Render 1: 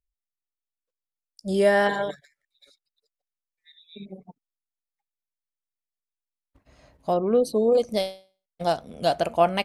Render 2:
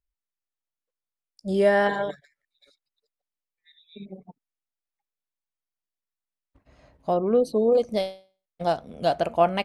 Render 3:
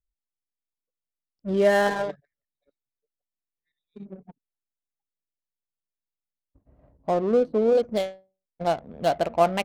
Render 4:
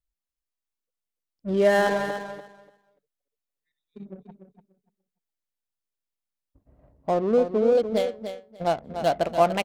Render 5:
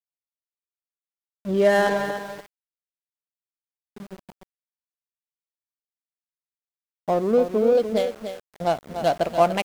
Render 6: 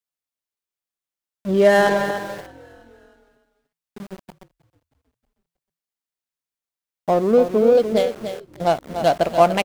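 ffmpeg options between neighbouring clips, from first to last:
ffmpeg -i in.wav -af "highshelf=frequency=4600:gain=-9.5" out.wav
ffmpeg -i in.wav -af "adynamicsmooth=sensitivity=6.5:basefreq=570" out.wav
ffmpeg -i in.wav -af "aecho=1:1:292|584|876:0.355|0.0603|0.0103" out.wav
ffmpeg -i in.wav -af "aeval=exprs='val(0)*gte(abs(val(0)),0.00891)':channel_layout=same,volume=1.5dB" out.wav
ffmpeg -i in.wav -filter_complex "[0:a]asplit=5[link_01][link_02][link_03][link_04][link_05];[link_02]adelay=316,afreqshift=-42,volume=-23dB[link_06];[link_03]adelay=632,afreqshift=-84,volume=-28.2dB[link_07];[link_04]adelay=948,afreqshift=-126,volume=-33.4dB[link_08];[link_05]adelay=1264,afreqshift=-168,volume=-38.6dB[link_09];[link_01][link_06][link_07][link_08][link_09]amix=inputs=5:normalize=0,volume=4dB" out.wav

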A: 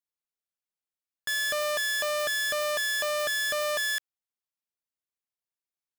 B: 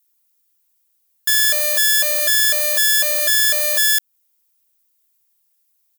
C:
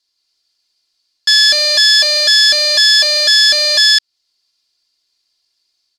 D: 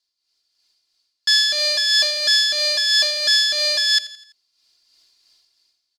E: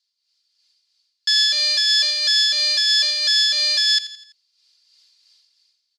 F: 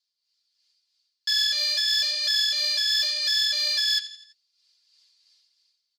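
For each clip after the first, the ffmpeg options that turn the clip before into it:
ffmpeg -i in.wav -af "aemphasis=mode=production:type=75fm,aecho=1:1:2.9:0.99,alimiter=limit=-12dB:level=0:latency=1:release=195,volume=8dB" out.wav
ffmpeg -i in.wav -af "dynaudnorm=framelen=150:gausssize=3:maxgain=3dB,lowpass=frequency=4600:width_type=q:width=8,volume=2.5dB" out.wav
ffmpeg -i in.wav -af "dynaudnorm=framelen=140:gausssize=9:maxgain=16.5dB,tremolo=f=3:d=0.44,aecho=1:1:84|168|252|336:0.141|0.0706|0.0353|0.0177,volume=-6.5dB" out.wav
ffmpeg -i in.wav -af "alimiter=limit=-10.5dB:level=0:latency=1:release=27,bandpass=frequency=3900:width_type=q:width=0.63:csg=0,volume=2dB" out.wav
ffmpeg -i in.wav -filter_complex "[0:a]flanger=delay=4.4:depth=7.2:regen=27:speed=0.86:shape=triangular,asplit=2[link_01][link_02];[link_02]asoftclip=type=hard:threshold=-19.5dB,volume=-4dB[link_03];[link_01][link_03]amix=inputs=2:normalize=0,volume=-6dB" out.wav

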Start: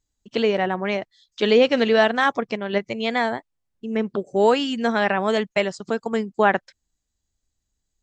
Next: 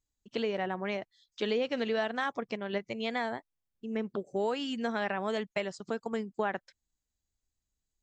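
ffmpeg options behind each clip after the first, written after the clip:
ffmpeg -i in.wav -af "acompressor=threshold=-20dB:ratio=3,volume=-8.5dB" out.wav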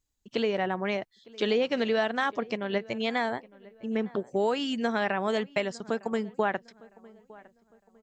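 ffmpeg -i in.wav -filter_complex "[0:a]asplit=2[link_01][link_02];[link_02]adelay=907,lowpass=frequency=2100:poles=1,volume=-22dB,asplit=2[link_03][link_04];[link_04]adelay=907,lowpass=frequency=2100:poles=1,volume=0.38,asplit=2[link_05][link_06];[link_06]adelay=907,lowpass=frequency=2100:poles=1,volume=0.38[link_07];[link_01][link_03][link_05][link_07]amix=inputs=4:normalize=0,volume=4.5dB" out.wav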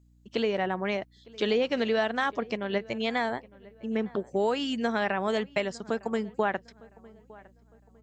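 ffmpeg -i in.wav -af "aeval=exprs='val(0)+0.00112*(sin(2*PI*60*n/s)+sin(2*PI*2*60*n/s)/2+sin(2*PI*3*60*n/s)/3+sin(2*PI*4*60*n/s)/4+sin(2*PI*5*60*n/s)/5)':channel_layout=same" out.wav

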